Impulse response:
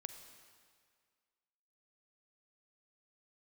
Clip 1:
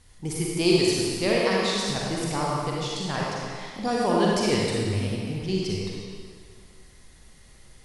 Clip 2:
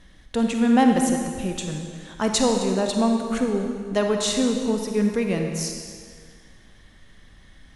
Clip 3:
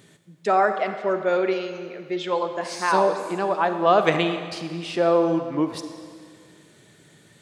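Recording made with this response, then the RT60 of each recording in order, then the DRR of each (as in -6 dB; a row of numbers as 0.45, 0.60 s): 3; 2.0, 2.0, 1.9 s; -4.5, 3.0, 8.0 dB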